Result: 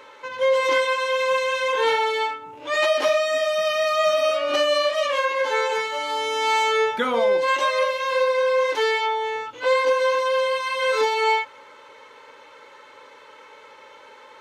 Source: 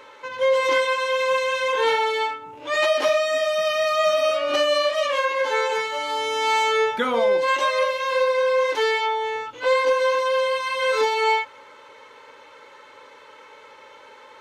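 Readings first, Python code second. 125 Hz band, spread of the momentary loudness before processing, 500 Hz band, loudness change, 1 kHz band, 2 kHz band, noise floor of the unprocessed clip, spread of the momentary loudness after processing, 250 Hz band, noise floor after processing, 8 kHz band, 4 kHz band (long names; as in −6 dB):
can't be measured, 5 LU, 0.0 dB, 0.0 dB, 0.0 dB, 0.0 dB, −47 dBFS, 5 LU, −0.5 dB, −47 dBFS, 0.0 dB, 0.0 dB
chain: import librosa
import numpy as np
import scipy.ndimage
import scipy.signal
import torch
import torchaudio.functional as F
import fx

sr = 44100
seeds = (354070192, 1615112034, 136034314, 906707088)

y = fx.low_shelf(x, sr, hz=81.0, db=-5.0)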